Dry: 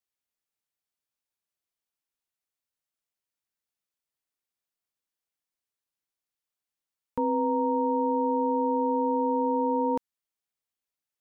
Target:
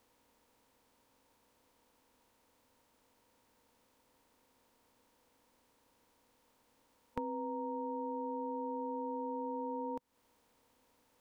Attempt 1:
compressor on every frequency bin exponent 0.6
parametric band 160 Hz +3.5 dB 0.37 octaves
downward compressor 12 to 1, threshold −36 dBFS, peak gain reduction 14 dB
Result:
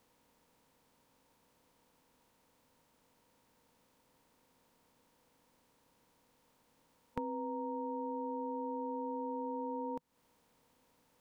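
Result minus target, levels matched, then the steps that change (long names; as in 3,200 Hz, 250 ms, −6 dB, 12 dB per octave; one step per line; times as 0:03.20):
125 Hz band +2.5 dB
change: parametric band 160 Hz −8 dB 0.37 octaves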